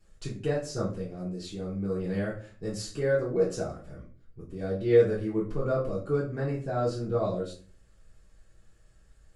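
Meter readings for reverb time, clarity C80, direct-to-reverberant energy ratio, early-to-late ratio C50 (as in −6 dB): 0.40 s, 12.0 dB, −9.0 dB, 6.5 dB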